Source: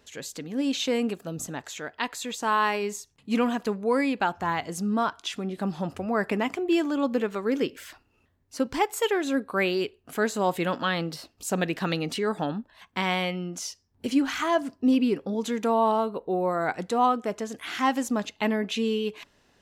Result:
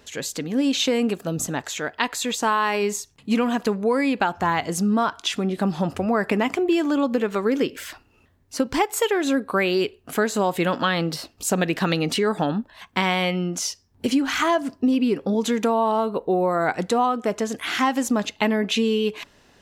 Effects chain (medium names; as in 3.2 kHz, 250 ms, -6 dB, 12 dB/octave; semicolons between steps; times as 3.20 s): compression, threshold -25 dBFS, peak gain reduction 8 dB; trim +8 dB